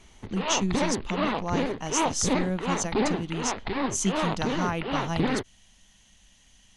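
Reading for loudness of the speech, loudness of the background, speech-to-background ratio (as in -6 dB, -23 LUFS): -31.0 LUFS, -29.5 LUFS, -1.5 dB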